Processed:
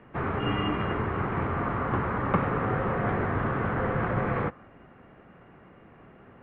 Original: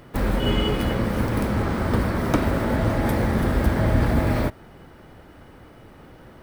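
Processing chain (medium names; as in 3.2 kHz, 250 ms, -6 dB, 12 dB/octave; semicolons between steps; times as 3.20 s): dynamic bell 1.3 kHz, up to +7 dB, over -47 dBFS, Q 2.4; mistuned SSB -120 Hz 200–2800 Hz; trim -3.5 dB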